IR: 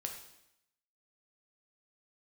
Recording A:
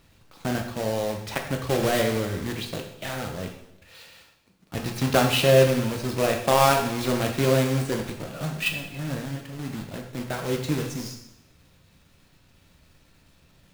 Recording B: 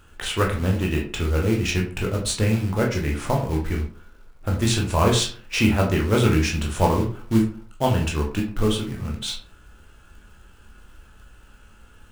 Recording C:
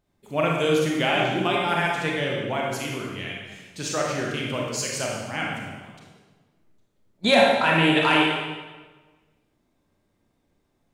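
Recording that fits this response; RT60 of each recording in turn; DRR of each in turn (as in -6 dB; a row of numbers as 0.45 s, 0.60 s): A; 0.80 s, 0.45 s, 1.4 s; 2.0 dB, -1.0 dB, -2.5 dB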